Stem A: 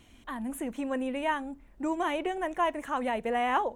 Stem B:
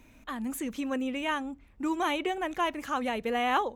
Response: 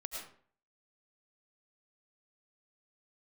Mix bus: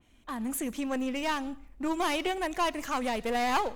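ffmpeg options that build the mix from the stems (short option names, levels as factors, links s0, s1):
-filter_complex "[0:a]asubboost=boost=8.5:cutoff=64,volume=0.473,asplit=2[s0][s1];[1:a]aeval=exprs='clip(val(0),-1,0.0211)':c=same,volume=0.668,asplit=2[s2][s3];[s3]volume=0.211[s4];[s1]apad=whole_len=165530[s5];[s2][s5]sidechaingate=range=0.0224:threshold=0.00355:ratio=16:detection=peak[s6];[2:a]atrim=start_sample=2205[s7];[s4][s7]afir=irnorm=-1:irlink=0[s8];[s0][s6][s8]amix=inputs=3:normalize=0,adynamicequalizer=threshold=0.00447:dfrequency=2800:dqfactor=0.7:tfrequency=2800:tqfactor=0.7:attack=5:release=100:ratio=0.375:range=4:mode=boostabove:tftype=highshelf"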